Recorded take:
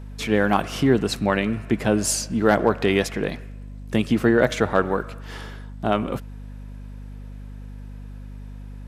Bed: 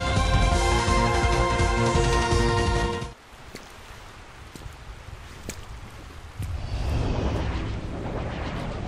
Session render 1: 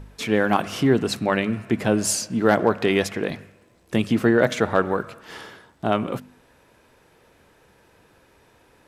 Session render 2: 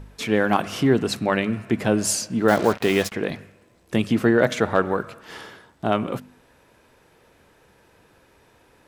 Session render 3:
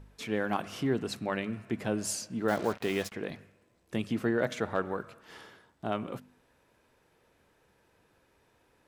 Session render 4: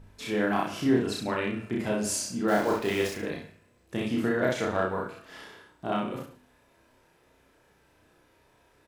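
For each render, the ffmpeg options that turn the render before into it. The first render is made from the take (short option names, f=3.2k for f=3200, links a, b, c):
-af "bandreject=f=50:t=h:w=4,bandreject=f=100:t=h:w=4,bandreject=f=150:t=h:w=4,bandreject=f=200:t=h:w=4,bandreject=f=250:t=h:w=4"
-filter_complex "[0:a]asettb=1/sr,asplit=3[a][b][c];[a]atrim=end=2.484[d];[b]atrim=start=2.48:end=3.12,asetpts=PTS-STARTPTS,afade=t=in:d=0.004:c=qsin,afade=t=out:st=0.636:d=0.004:c=qsin,acrusher=bits=4:mix=0:aa=0.5[e];[c]atrim=start=3.116[f];[d][e]acrossfade=d=0.004:c1=hsin:c2=qsin[g];[g][f]acrossfade=d=0.004:c1=qsin:c2=hsin"
-af "volume=-11dB"
-filter_complex "[0:a]asplit=2[a][b];[b]adelay=33,volume=-3dB[c];[a][c]amix=inputs=2:normalize=0,asplit=2[d][e];[e]aecho=0:1:30|63|99.3|139.2|183.2:0.631|0.398|0.251|0.158|0.1[f];[d][f]amix=inputs=2:normalize=0"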